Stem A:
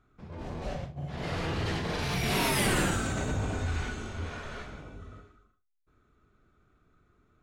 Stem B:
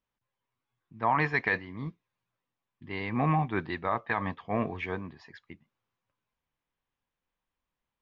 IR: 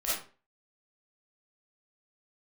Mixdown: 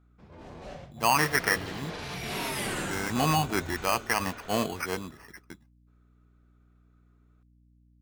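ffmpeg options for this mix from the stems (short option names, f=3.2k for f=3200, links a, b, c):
-filter_complex "[0:a]volume=-4.5dB[a];[1:a]agate=range=-33dB:threshold=-55dB:ratio=3:detection=peak,acrusher=samples=12:mix=1:aa=0.000001,volume=3dB[b];[a][b]amix=inputs=2:normalize=0,lowshelf=f=150:g=-8,aeval=exprs='val(0)+0.001*(sin(2*PI*60*n/s)+sin(2*PI*2*60*n/s)/2+sin(2*PI*3*60*n/s)/3+sin(2*PI*4*60*n/s)/4+sin(2*PI*5*60*n/s)/5)':c=same"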